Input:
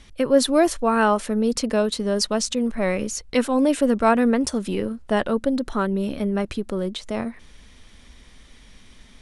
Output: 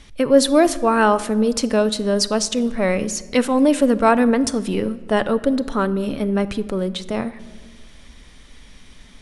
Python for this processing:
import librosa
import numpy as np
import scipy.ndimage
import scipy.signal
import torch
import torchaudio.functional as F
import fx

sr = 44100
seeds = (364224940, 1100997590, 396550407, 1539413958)

y = fx.room_shoebox(x, sr, seeds[0], volume_m3=1500.0, walls='mixed', distance_m=0.35)
y = y * librosa.db_to_amplitude(3.0)